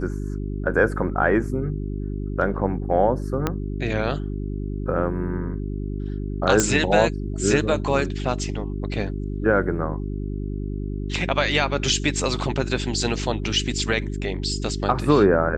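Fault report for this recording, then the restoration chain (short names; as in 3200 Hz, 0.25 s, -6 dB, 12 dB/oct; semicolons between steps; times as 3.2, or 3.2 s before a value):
hum 50 Hz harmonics 8 -28 dBFS
3.47 pop -8 dBFS
6.6 pop -5 dBFS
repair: de-click; de-hum 50 Hz, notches 8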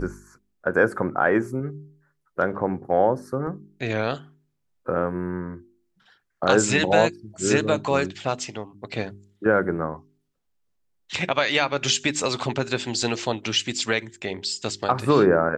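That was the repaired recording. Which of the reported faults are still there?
3.47 pop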